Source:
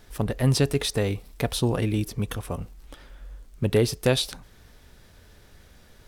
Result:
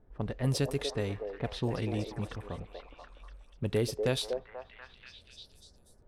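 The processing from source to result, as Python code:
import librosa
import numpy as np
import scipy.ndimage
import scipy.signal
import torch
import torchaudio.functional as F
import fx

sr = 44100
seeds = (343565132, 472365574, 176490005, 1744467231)

y = fx.env_lowpass(x, sr, base_hz=680.0, full_db=-18.5)
y = fx.echo_stepped(y, sr, ms=242, hz=540.0, octaves=0.7, feedback_pct=70, wet_db=-2.0)
y = F.gain(torch.from_numpy(y), -8.5).numpy()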